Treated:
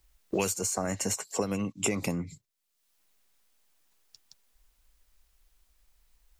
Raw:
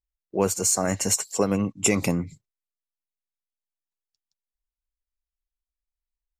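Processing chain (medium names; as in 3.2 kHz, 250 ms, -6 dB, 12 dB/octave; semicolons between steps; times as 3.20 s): three bands compressed up and down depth 100%; trim -7 dB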